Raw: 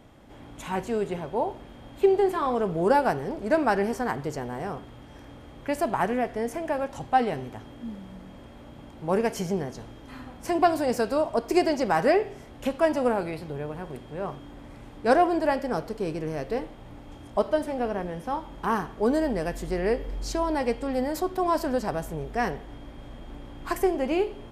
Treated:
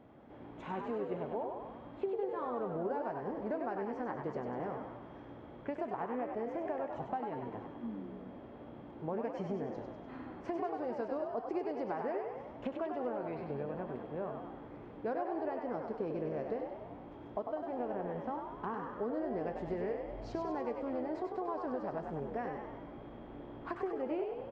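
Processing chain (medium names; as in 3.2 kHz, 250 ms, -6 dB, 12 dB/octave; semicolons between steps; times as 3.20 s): high-pass 320 Hz 6 dB/octave; bass shelf 490 Hz +3.5 dB; compression, threshold -31 dBFS, peak gain reduction 15.5 dB; tape spacing loss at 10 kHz 41 dB; on a send: frequency-shifting echo 98 ms, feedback 57%, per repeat +61 Hz, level -5.5 dB; on the sum: trim -2 dB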